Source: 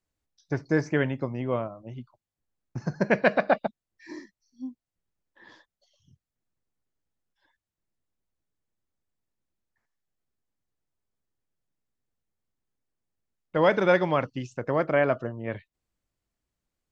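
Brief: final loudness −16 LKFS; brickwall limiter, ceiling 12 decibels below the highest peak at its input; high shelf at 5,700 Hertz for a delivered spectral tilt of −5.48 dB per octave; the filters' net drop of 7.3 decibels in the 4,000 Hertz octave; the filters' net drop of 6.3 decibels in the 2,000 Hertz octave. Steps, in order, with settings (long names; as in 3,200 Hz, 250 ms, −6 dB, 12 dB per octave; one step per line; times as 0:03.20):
parametric band 2,000 Hz −7 dB
parametric band 4,000 Hz −4.5 dB
high-shelf EQ 5,700 Hz −7 dB
level +18.5 dB
brickwall limiter −2.5 dBFS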